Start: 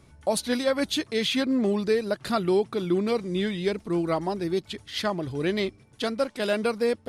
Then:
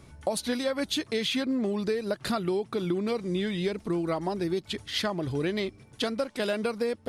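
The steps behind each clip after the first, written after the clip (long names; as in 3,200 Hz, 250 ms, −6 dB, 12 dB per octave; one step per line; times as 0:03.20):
downward compressor, threshold −29 dBFS, peak gain reduction 10.5 dB
level +3.5 dB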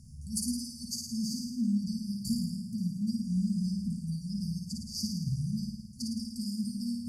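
brick-wall band-stop 250–4,500 Hz
flutter between parallel walls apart 9.4 metres, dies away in 0.95 s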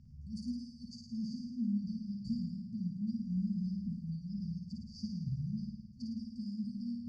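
transistor ladder low-pass 3,800 Hz, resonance 25%
level +1 dB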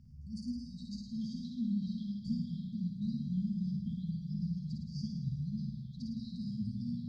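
delay with pitch and tempo change per echo 344 ms, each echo −3 semitones, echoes 2, each echo −6 dB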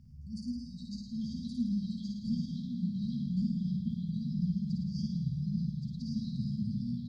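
single-tap delay 1,122 ms −3 dB
level +1.5 dB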